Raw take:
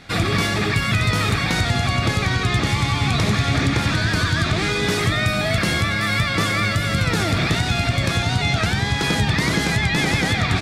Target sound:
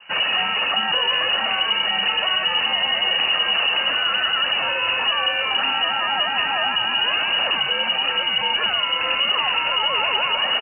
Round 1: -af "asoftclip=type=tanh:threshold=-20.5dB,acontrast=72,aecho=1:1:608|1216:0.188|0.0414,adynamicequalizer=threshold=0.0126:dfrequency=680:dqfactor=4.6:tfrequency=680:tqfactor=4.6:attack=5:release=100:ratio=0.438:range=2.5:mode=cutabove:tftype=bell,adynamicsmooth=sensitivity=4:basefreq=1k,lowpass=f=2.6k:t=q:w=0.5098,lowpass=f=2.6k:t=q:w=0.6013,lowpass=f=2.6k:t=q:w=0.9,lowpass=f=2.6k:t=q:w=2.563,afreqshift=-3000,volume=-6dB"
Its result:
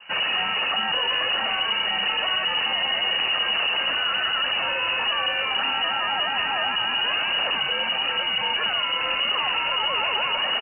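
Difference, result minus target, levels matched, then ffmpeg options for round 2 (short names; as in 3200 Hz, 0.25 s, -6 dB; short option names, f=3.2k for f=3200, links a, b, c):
soft clip: distortion +10 dB
-af "asoftclip=type=tanh:threshold=-12dB,acontrast=72,aecho=1:1:608|1216:0.188|0.0414,adynamicequalizer=threshold=0.0126:dfrequency=680:dqfactor=4.6:tfrequency=680:tqfactor=4.6:attack=5:release=100:ratio=0.438:range=2.5:mode=cutabove:tftype=bell,adynamicsmooth=sensitivity=4:basefreq=1k,lowpass=f=2.6k:t=q:w=0.5098,lowpass=f=2.6k:t=q:w=0.6013,lowpass=f=2.6k:t=q:w=0.9,lowpass=f=2.6k:t=q:w=2.563,afreqshift=-3000,volume=-6dB"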